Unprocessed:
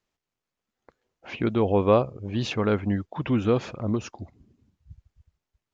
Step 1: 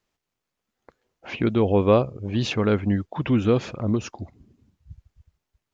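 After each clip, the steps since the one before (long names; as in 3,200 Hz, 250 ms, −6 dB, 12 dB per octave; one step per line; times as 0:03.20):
dynamic equaliser 920 Hz, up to −4 dB, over −36 dBFS, Q 0.82
level +3.5 dB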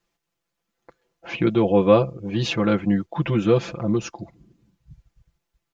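comb filter 5.9 ms, depth 99%
level −1 dB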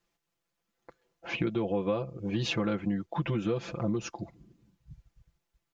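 downward compressor 8 to 1, threshold −23 dBFS, peak gain reduction 13.5 dB
level −3 dB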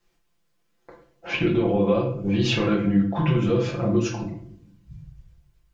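rectangular room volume 67 cubic metres, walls mixed, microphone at 0.95 metres
level +3.5 dB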